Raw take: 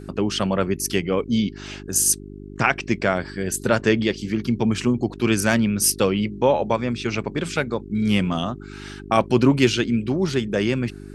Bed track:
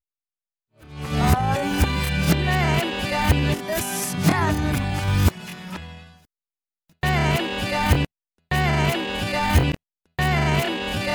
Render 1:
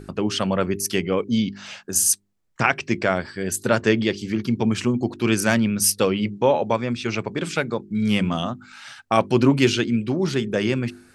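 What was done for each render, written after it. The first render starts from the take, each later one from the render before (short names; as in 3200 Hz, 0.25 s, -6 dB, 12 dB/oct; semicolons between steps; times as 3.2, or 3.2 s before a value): de-hum 50 Hz, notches 8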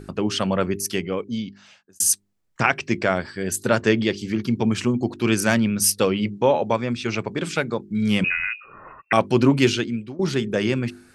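0.64–2 fade out; 8.24–9.13 inverted band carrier 2700 Hz; 9.67–10.19 fade out, to -17.5 dB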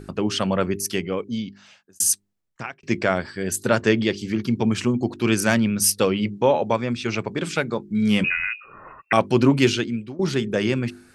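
2.02–2.83 fade out; 7.71–8.37 doubler 14 ms -12.5 dB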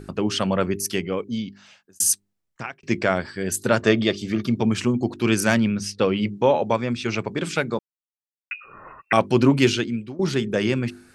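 3.82–4.61 small resonant body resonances 640/1200/3600 Hz, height 12 dB; 5.72–6.13 air absorption 150 m; 7.79–8.51 mute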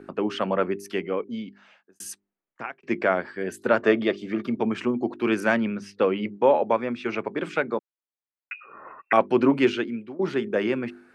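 three-band isolator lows -20 dB, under 220 Hz, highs -19 dB, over 2600 Hz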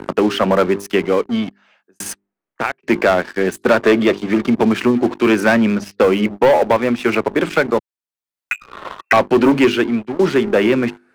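sample leveller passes 3; three-band squash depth 40%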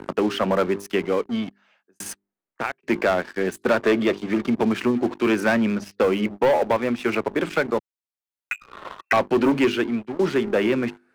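gain -6.5 dB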